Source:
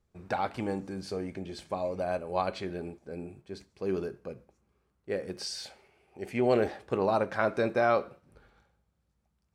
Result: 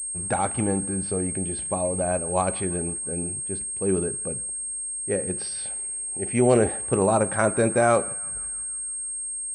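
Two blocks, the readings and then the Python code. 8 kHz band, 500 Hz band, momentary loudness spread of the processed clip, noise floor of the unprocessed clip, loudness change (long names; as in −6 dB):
+28.0 dB, +6.0 dB, 8 LU, −76 dBFS, +7.0 dB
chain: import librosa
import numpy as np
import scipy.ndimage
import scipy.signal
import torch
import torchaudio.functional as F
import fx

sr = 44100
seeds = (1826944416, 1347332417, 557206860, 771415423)

y = fx.low_shelf(x, sr, hz=200.0, db=9.5)
y = fx.echo_banded(y, sr, ms=165, feedback_pct=66, hz=1600.0, wet_db=-20.0)
y = fx.pwm(y, sr, carrier_hz=8500.0)
y = F.gain(torch.from_numpy(y), 4.5).numpy()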